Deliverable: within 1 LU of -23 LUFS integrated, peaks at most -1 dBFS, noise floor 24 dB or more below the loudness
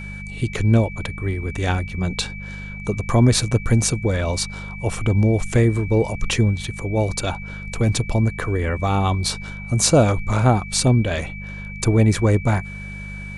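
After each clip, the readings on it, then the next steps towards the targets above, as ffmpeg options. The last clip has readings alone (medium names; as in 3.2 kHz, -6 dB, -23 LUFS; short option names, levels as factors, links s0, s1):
hum 50 Hz; highest harmonic 200 Hz; hum level -33 dBFS; steady tone 2.3 kHz; tone level -35 dBFS; loudness -20.5 LUFS; peak level -3.0 dBFS; loudness target -23.0 LUFS
-> -af "bandreject=f=50:t=h:w=4,bandreject=f=100:t=h:w=4,bandreject=f=150:t=h:w=4,bandreject=f=200:t=h:w=4"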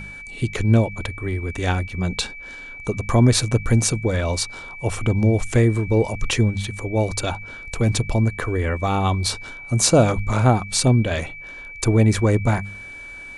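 hum not found; steady tone 2.3 kHz; tone level -35 dBFS
-> -af "bandreject=f=2300:w=30"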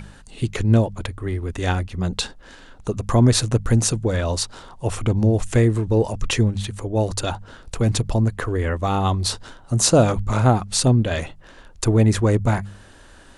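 steady tone not found; loudness -21.0 LUFS; peak level -3.5 dBFS; loudness target -23.0 LUFS
-> -af "volume=0.794"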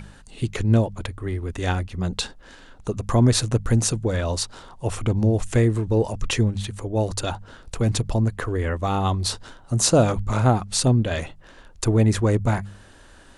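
loudness -23.0 LUFS; peak level -5.5 dBFS; noise floor -48 dBFS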